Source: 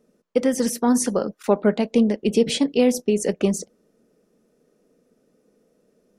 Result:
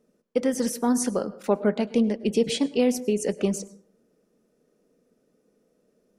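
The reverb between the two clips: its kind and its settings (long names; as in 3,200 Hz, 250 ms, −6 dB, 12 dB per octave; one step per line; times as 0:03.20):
dense smooth reverb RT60 0.61 s, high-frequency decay 0.45×, pre-delay 90 ms, DRR 17.5 dB
level −4 dB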